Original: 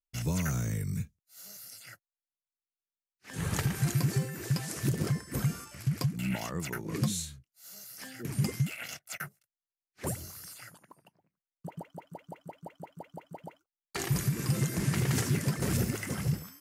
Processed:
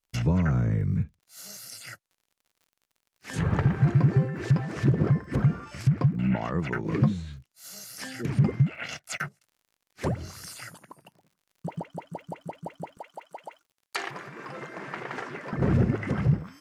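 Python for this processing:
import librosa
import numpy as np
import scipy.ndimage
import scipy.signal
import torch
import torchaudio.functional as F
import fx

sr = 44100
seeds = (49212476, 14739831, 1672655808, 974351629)

y = fx.env_lowpass_down(x, sr, base_hz=1400.0, full_db=-29.5)
y = fx.highpass(y, sr, hz=670.0, slope=12, at=(12.97, 15.53))
y = fx.dmg_crackle(y, sr, seeds[0], per_s=48.0, level_db=-58.0)
y = y * librosa.db_to_amplitude(7.5)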